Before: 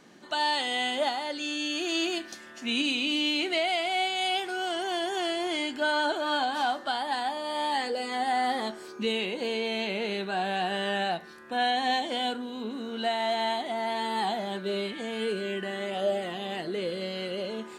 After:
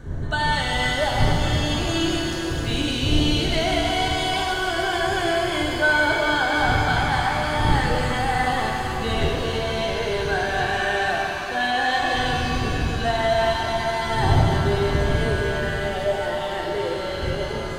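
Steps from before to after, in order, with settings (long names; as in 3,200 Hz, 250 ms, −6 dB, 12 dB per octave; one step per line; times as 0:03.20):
wind on the microphone 150 Hz −32 dBFS
thirty-one-band graphic EQ 200 Hz −11 dB, 1,600 Hz +8 dB, 2,500 Hz −9 dB, 5,000 Hz −9 dB
reverb with rising layers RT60 3.7 s, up +7 semitones, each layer −8 dB, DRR −1 dB
level +2.5 dB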